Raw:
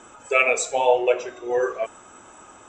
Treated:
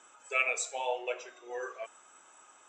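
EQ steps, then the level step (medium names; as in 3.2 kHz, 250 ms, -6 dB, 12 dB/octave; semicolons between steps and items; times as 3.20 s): high-pass 1.3 kHz 6 dB/octave; -8.0 dB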